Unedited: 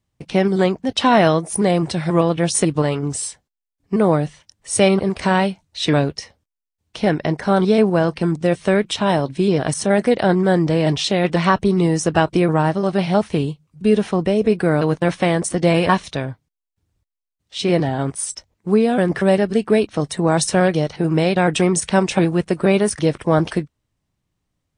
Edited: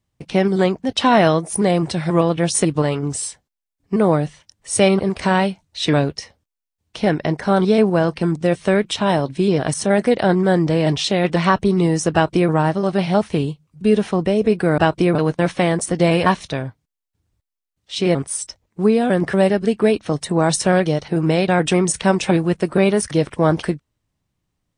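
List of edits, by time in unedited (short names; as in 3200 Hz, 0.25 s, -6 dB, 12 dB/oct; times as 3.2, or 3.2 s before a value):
12.13–12.5 copy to 14.78
17.78–18.03 cut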